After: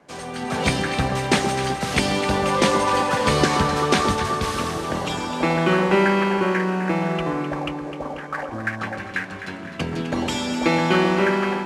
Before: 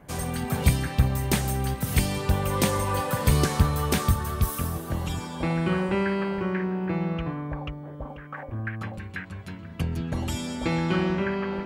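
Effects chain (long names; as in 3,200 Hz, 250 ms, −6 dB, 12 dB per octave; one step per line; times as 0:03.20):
variable-slope delta modulation 64 kbit/s
three-way crossover with the lows and the highs turned down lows −18 dB, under 210 Hz, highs −16 dB, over 7,100 Hz
automatic gain control gain up to 9.5 dB
on a send: delay that swaps between a low-pass and a high-pass 128 ms, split 1,200 Hz, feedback 75%, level −7.5 dB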